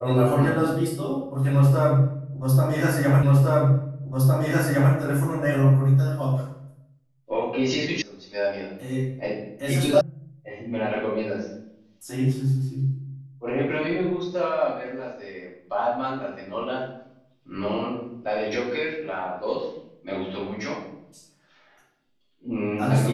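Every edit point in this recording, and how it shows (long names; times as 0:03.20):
0:03.23: the same again, the last 1.71 s
0:08.02: cut off before it has died away
0:10.01: cut off before it has died away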